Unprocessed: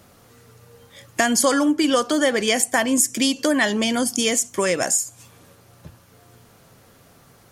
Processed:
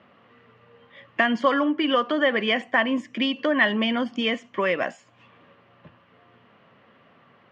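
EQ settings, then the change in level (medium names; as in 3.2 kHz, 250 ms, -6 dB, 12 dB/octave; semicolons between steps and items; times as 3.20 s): cabinet simulation 150–3100 Hz, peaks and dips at 220 Hz +5 dB, 590 Hz +4 dB, 1.1 kHz +8 dB, 1.9 kHz +7 dB, 2.9 kHz +8 dB; -5.5 dB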